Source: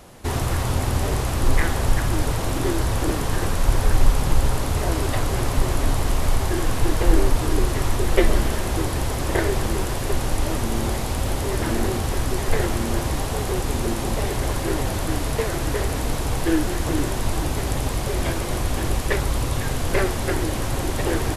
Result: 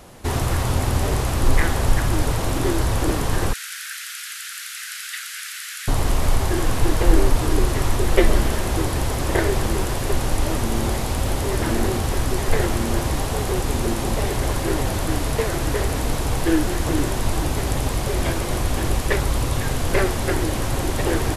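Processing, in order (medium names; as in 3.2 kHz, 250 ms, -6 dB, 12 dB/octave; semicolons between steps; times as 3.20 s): 3.53–5.88 s: steep high-pass 1.4 kHz 72 dB/octave; trim +1.5 dB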